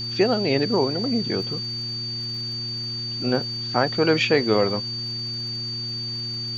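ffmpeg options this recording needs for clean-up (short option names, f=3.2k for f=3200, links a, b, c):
-af "adeclick=t=4,bandreject=f=117.5:t=h:w=4,bandreject=f=235:t=h:w=4,bandreject=f=352.5:t=h:w=4,bandreject=f=4.6k:w=30,afwtdn=0.0056"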